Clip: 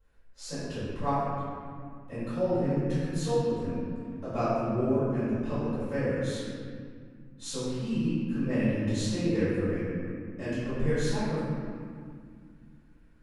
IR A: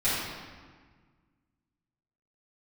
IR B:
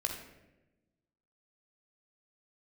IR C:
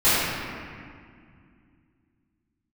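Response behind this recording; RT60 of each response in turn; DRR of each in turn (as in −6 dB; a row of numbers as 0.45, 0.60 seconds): C; 1.6, 1.0, 2.1 seconds; −14.0, 1.5, −17.0 decibels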